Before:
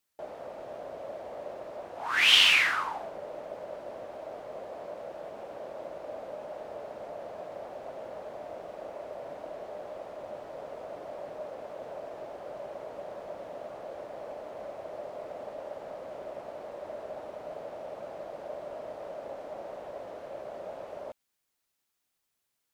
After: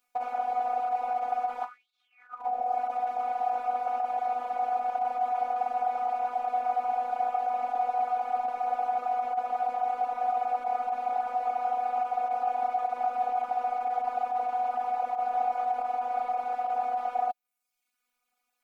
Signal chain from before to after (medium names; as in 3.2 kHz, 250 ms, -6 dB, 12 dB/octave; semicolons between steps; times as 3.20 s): reverb removal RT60 1 s; compressor with a negative ratio -42 dBFS, ratio -0.5; tape speed +22%; small resonant body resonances 780/1300/2300 Hz, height 17 dB, ringing for 25 ms; robot voice 247 Hz